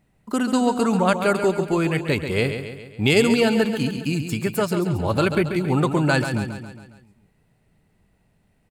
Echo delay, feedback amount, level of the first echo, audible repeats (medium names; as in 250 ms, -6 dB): 137 ms, 53%, -8.5 dB, 5